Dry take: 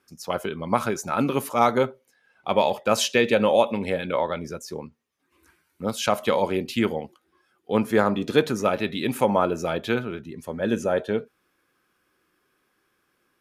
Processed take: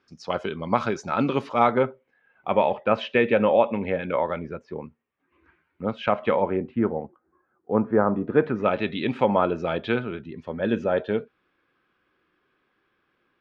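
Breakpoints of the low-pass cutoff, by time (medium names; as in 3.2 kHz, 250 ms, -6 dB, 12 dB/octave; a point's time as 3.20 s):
low-pass 24 dB/octave
1.39 s 5 kHz
1.82 s 2.6 kHz
6.26 s 2.6 kHz
6.77 s 1.4 kHz
8.24 s 1.4 kHz
8.77 s 3.7 kHz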